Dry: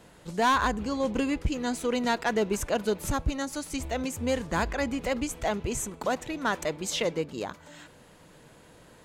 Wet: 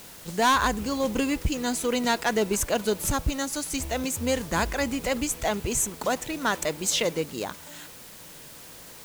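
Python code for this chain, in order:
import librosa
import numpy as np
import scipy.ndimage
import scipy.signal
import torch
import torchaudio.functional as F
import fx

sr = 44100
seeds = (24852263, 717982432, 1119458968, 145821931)

y = fx.high_shelf(x, sr, hz=4300.0, db=8.5)
y = fx.quant_dither(y, sr, seeds[0], bits=8, dither='triangular')
y = F.gain(torch.from_numpy(y), 1.5).numpy()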